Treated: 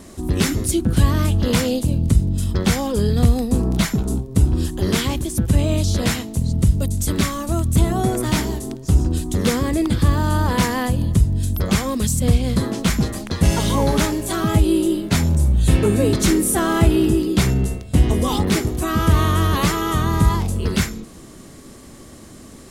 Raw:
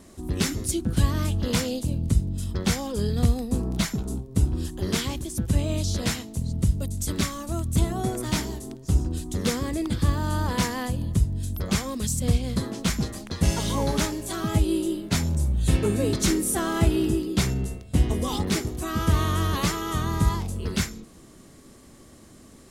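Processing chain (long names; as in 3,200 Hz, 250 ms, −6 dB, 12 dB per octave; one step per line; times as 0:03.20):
in parallel at −3 dB: brickwall limiter −20 dBFS, peak gain reduction 10.5 dB
on the sum: dynamic equaliser 5,700 Hz, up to −4 dB, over −40 dBFS, Q 0.93
level +4 dB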